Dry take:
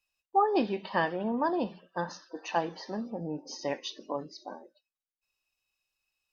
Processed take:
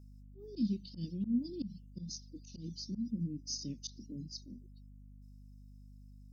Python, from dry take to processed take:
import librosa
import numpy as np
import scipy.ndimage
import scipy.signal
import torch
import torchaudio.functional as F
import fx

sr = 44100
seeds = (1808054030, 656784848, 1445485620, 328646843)

y = scipy.signal.sosfilt(scipy.signal.ellip(3, 1.0, 60, [230.0, 5100.0], 'bandstop', fs=sr, output='sos'), x)
y = fx.auto_swell(y, sr, attack_ms=106.0)
y = fx.dereverb_blind(y, sr, rt60_s=0.53)
y = fx.add_hum(y, sr, base_hz=50, snr_db=13)
y = F.gain(torch.from_numpy(y), 5.0).numpy()